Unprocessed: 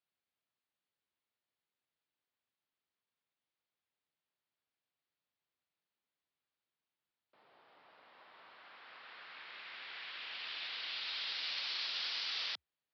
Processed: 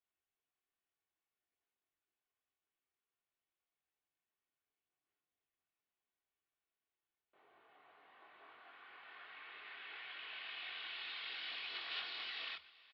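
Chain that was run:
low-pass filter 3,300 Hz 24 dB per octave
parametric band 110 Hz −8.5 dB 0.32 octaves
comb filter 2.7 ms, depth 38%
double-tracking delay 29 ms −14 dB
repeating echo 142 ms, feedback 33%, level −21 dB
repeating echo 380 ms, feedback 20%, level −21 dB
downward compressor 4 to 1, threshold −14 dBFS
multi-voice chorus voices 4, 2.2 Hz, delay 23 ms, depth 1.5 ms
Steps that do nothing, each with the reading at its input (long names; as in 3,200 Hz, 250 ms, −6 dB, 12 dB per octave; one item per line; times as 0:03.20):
downward compressor, threshold −14 dBFS: peak of its input −29.0 dBFS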